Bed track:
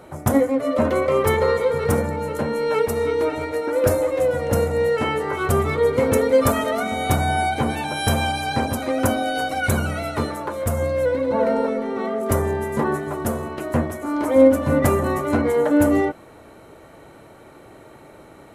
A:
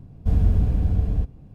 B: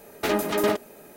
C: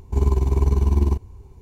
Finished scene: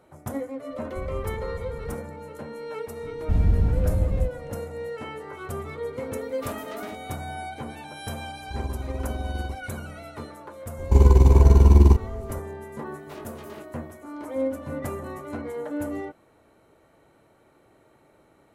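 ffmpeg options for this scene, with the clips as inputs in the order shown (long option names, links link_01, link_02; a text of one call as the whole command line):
ffmpeg -i bed.wav -i cue0.wav -i cue1.wav -i cue2.wav -filter_complex "[1:a]asplit=2[link_01][link_02];[2:a]asplit=2[link_03][link_04];[3:a]asplit=2[link_05][link_06];[0:a]volume=-14dB[link_07];[link_03]asplit=2[link_08][link_09];[link_09]adelay=16,volume=-7.5dB[link_10];[link_08][link_10]amix=inputs=2:normalize=0[link_11];[link_06]alimiter=level_in=11.5dB:limit=-1dB:release=50:level=0:latency=1[link_12];[link_04]flanger=delay=20:depth=3.4:speed=2[link_13];[link_01]atrim=end=1.54,asetpts=PTS-STARTPTS,volume=-15.5dB,afade=type=in:duration=0.004:curve=hsin,afade=type=out:start_time=1.536:duration=0.004:curve=hsin,adelay=700[link_14];[link_02]atrim=end=1.54,asetpts=PTS-STARTPTS,volume=-1.5dB,afade=type=in:duration=0.004:curve=hsin,afade=type=out:start_time=1.536:duration=0.004:curve=hsin,adelay=3030[link_15];[link_11]atrim=end=1.16,asetpts=PTS-STARTPTS,volume=-16dB,afade=type=in:duration=0.004:curve=hsin,afade=type=out:start_time=1.156:duration=0.004:curve=hsin,adelay=6190[link_16];[link_05]atrim=end=1.61,asetpts=PTS-STARTPTS,volume=-13dB,afade=type=in:duration=0.004:curve=hsin,afade=type=out:start_time=1.606:duration=0.004:curve=hsin,adelay=8380[link_17];[link_12]atrim=end=1.61,asetpts=PTS-STARTPTS,volume=-4.5dB,afade=type=in:duration=0.004:curve=hsin,afade=type=out:start_time=1.606:duration=0.004:curve=hsin,adelay=10790[link_18];[link_13]atrim=end=1.16,asetpts=PTS-STARTPTS,volume=-16.5dB,afade=type=in:duration=0.004:curve=hsin,afade=type=out:start_time=1.156:duration=0.004:curve=hsin,adelay=12860[link_19];[link_07][link_14][link_15][link_16][link_17][link_18][link_19]amix=inputs=7:normalize=0" out.wav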